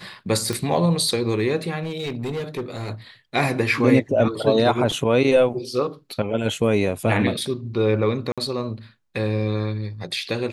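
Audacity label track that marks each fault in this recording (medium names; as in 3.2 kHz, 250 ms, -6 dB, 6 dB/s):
0.530000	0.530000	pop -12 dBFS
1.830000	2.900000	clipped -23 dBFS
8.320000	8.380000	dropout 56 ms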